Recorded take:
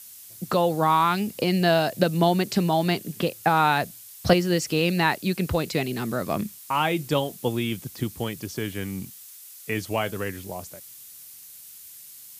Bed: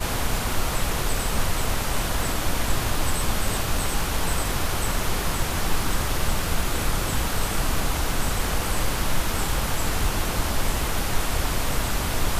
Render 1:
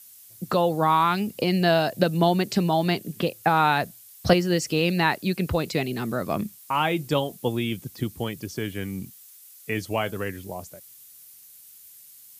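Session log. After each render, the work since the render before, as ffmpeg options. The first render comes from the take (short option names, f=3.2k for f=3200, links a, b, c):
-af "afftdn=nr=6:nf=-45"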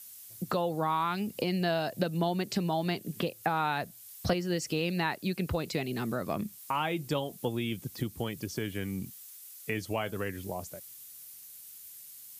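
-af "acompressor=threshold=-33dB:ratio=2"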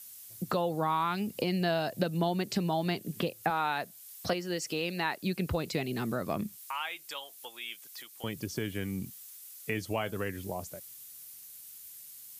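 -filter_complex "[0:a]asettb=1/sr,asplit=3[a][b][c];[a]atrim=end=3.504[d];[b]atrim=start=3.5:end=5.23,asetpts=PTS-STARTPTS,afade=t=in:d=0.004:c=qsin,afade=t=out:st=1.726:d=0.004:c=qsin,highpass=f=330:p=1[e];[c]atrim=start=5.226[f];[d][e]acrossfade=d=0.004:c1=hsin:c2=qsin[g];[g][f]acrossfade=d=0.004:c1=qsin:c2=hsin,asettb=1/sr,asplit=3[h][i][j];[h]atrim=end=6.574[k];[i]atrim=start=6.57:end=8.24,asetpts=PTS-STARTPTS,afade=t=in:d=0.004:c=qsin,afade=t=out:st=1.666:d=0.004:c=qsin,highpass=1.3k[l];[j]atrim=start=8.236[m];[k][l]acrossfade=d=0.004:c1=hsin:c2=qsin[n];[n][m]acrossfade=d=0.004:c1=qsin:c2=hsin"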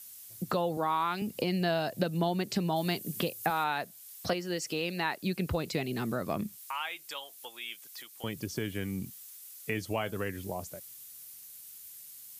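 -filter_complex "[0:a]asettb=1/sr,asplit=3[a][b][c];[a]atrim=end=0.774[d];[b]atrim=start=0.77:end=1.22,asetpts=PTS-STARTPTS,afade=t=in:d=0.004:c=qsin,afade=t=out:st=0.446:d=0.004:c=qsin,highpass=220[e];[c]atrim=start=1.216[f];[d][e]acrossfade=d=0.004:c1=hsin:c2=qsin[g];[g][f]acrossfade=d=0.004:c1=qsin:c2=hsin,asettb=1/sr,asplit=3[h][i][j];[h]atrim=end=2.764[k];[i]atrim=start=2.76:end=3.64,asetpts=PTS-STARTPTS,afade=t=in:d=0.004:c=qsin,afade=t=out:st=0.876:d=0.004:c=qsin,aemphasis=mode=production:type=cd[l];[j]atrim=start=3.636[m];[k][l]acrossfade=d=0.004:c1=hsin:c2=qsin[n];[n][m]acrossfade=d=0.004:c1=qsin:c2=hsin"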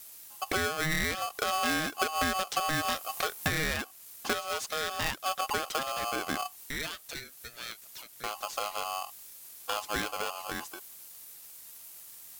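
-af "aeval=exprs='val(0)*sgn(sin(2*PI*940*n/s))':c=same"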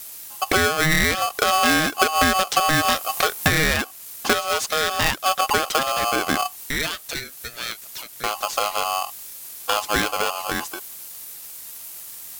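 -af "volume=11dB"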